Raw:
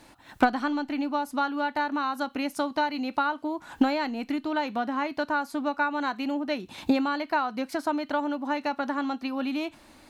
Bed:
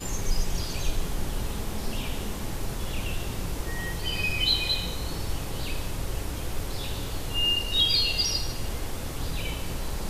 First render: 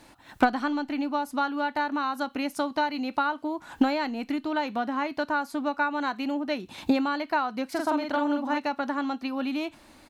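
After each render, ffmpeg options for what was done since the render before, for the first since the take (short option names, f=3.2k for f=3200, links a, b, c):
-filter_complex "[0:a]asplit=3[a][b][c];[a]afade=t=out:st=7.74:d=0.02[d];[b]asplit=2[e][f];[f]adelay=45,volume=-3dB[g];[e][g]amix=inputs=2:normalize=0,afade=t=in:st=7.74:d=0.02,afade=t=out:st=8.58:d=0.02[h];[c]afade=t=in:st=8.58:d=0.02[i];[d][h][i]amix=inputs=3:normalize=0"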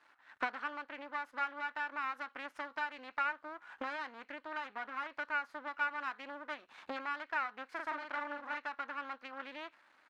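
-af "aeval=exprs='max(val(0),0)':c=same,bandpass=f=1.5k:t=q:w=2:csg=0"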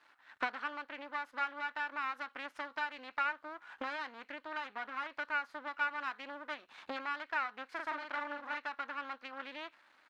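-af "equalizer=f=3.8k:w=1.1:g=3.5"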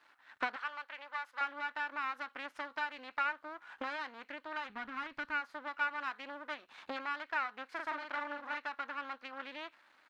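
-filter_complex "[0:a]asettb=1/sr,asplit=3[a][b][c];[a]atrim=end=0.564[d];[b]atrim=start=0.56:end=1.41,asetpts=PTS-STARTPTS,afade=t=in:d=0.004:c=qsin,afade=t=out:st=0.846:d=0.004:c=qsin,highpass=770[e];[c]atrim=start=1.406[f];[d][e]acrossfade=d=0.004:c1=hsin:c2=qsin[g];[g][f]acrossfade=d=0.004:c1=qsin:c2=hsin,asplit=3[h][i][j];[h]afade=t=out:st=4.68:d=0.02[k];[i]asubboost=boost=8.5:cutoff=190,afade=t=in:st=4.68:d=0.02,afade=t=out:st=5.4:d=0.02[l];[j]afade=t=in:st=5.4:d=0.02[m];[k][l][m]amix=inputs=3:normalize=0"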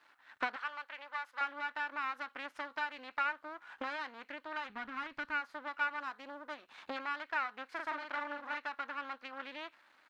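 -filter_complex "[0:a]asettb=1/sr,asplit=3[a][b][c];[a]atrim=end=5.994[d];[b]atrim=start=5.99:end=6.58,asetpts=PTS-STARTPTS,afade=t=in:d=0.004:c=qsin,afade=t=out:st=0.586:d=0.004:c=qsin,equalizer=f=2.4k:t=o:w=1.4:g=-7[e];[c]atrim=start=6.576[f];[d][e]acrossfade=d=0.004:c1=hsin:c2=qsin[g];[g][f]acrossfade=d=0.004:c1=qsin:c2=hsin"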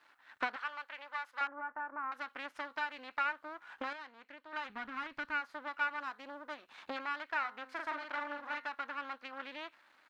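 -filter_complex "[0:a]asettb=1/sr,asplit=3[a][b][c];[a]atrim=end=1.474[d];[b]atrim=start=1.47:end=2.12,asetpts=PTS-STARTPTS,afade=t=in:d=0.004:c=qsin,afade=t=out:st=0.646:d=0.004:c=qsin,lowpass=f=1.4k:w=0.5412,lowpass=f=1.4k:w=1.3066[e];[c]atrim=start=2.116[f];[d][e]acrossfade=d=0.004:c1=hsin:c2=qsin[g];[g][f]acrossfade=d=0.004:c1=qsin:c2=hsin,asplit=3[h][i][j];[h]afade=t=out:st=7.35:d=0.02[k];[i]bandreject=f=130:t=h:w=4,bandreject=f=260:t=h:w=4,bandreject=f=390:t=h:w=4,bandreject=f=520:t=h:w=4,bandreject=f=650:t=h:w=4,bandreject=f=780:t=h:w=4,bandreject=f=910:t=h:w=4,bandreject=f=1.04k:t=h:w=4,bandreject=f=1.17k:t=h:w=4,bandreject=f=1.3k:t=h:w=4,bandreject=f=1.43k:t=h:w=4,bandreject=f=1.56k:t=h:w=4,bandreject=f=1.69k:t=h:w=4,bandreject=f=1.82k:t=h:w=4,bandreject=f=1.95k:t=h:w=4,bandreject=f=2.08k:t=h:w=4,afade=t=in:st=7.35:d=0.02,afade=t=out:st=8.68:d=0.02[l];[j]afade=t=in:st=8.68:d=0.02[m];[k][l][m]amix=inputs=3:normalize=0,asplit=3[n][o][p];[n]atrim=end=3.932[q];[o]atrim=start=3.928:end=4.532,asetpts=PTS-STARTPTS,volume=-7.5dB[r];[p]atrim=start=4.528[s];[q][r]acrossfade=d=0.004:c1=hsin:c2=hsin[t];[t][s]acrossfade=d=0.004:c1=hsin:c2=hsin"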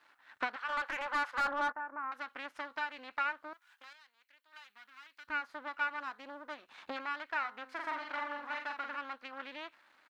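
-filter_complex "[0:a]asplit=3[a][b][c];[a]afade=t=out:st=0.68:d=0.02[d];[b]asplit=2[e][f];[f]highpass=f=720:p=1,volume=26dB,asoftclip=type=tanh:threshold=-22dB[g];[e][g]amix=inputs=2:normalize=0,lowpass=f=1.5k:p=1,volume=-6dB,afade=t=in:st=0.68:d=0.02,afade=t=out:st=1.71:d=0.02[h];[c]afade=t=in:st=1.71:d=0.02[i];[d][h][i]amix=inputs=3:normalize=0,asettb=1/sr,asplit=3[j][k][l];[j]atrim=end=3.534[m];[k]atrim=start=3.53:end=5.28,asetpts=PTS-STARTPTS,afade=t=in:d=0.004:c=qsin,afade=t=out:st=1.746:d=0.004:c=qsin,aderivative[n];[l]atrim=start=5.276[o];[m][n]acrossfade=d=0.004:c1=hsin:c2=qsin[p];[p][o]acrossfade=d=0.004:c1=qsin:c2=hsin,asplit=3[q][r][s];[q]afade=t=out:st=7.79:d=0.02[t];[r]asplit=2[u][v];[v]adelay=46,volume=-5dB[w];[u][w]amix=inputs=2:normalize=0,afade=t=in:st=7.79:d=0.02,afade=t=out:st=8.96:d=0.02[x];[s]afade=t=in:st=8.96:d=0.02[y];[t][x][y]amix=inputs=3:normalize=0"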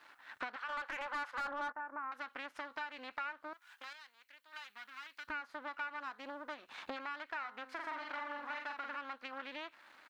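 -filter_complex "[0:a]asplit=2[a][b];[b]alimiter=level_in=5.5dB:limit=-24dB:level=0:latency=1,volume=-5.5dB,volume=-1dB[c];[a][c]amix=inputs=2:normalize=0,acompressor=threshold=-43dB:ratio=2.5"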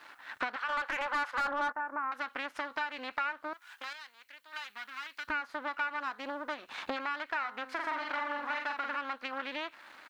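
-af "volume=7.5dB"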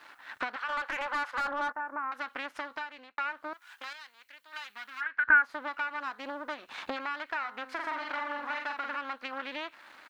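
-filter_complex "[0:a]asplit=3[a][b][c];[a]afade=t=out:st=5:d=0.02[d];[b]lowpass=f=1.6k:t=q:w=9,afade=t=in:st=5:d=0.02,afade=t=out:st=5.42:d=0.02[e];[c]afade=t=in:st=5.42:d=0.02[f];[d][e][f]amix=inputs=3:normalize=0,asplit=2[g][h];[g]atrim=end=3.18,asetpts=PTS-STARTPTS,afade=t=out:st=2.39:d=0.79:c=qsin[i];[h]atrim=start=3.18,asetpts=PTS-STARTPTS,afade=t=in:d=0.004:c=hsin[j];[i][j]concat=n=2:v=0:a=1"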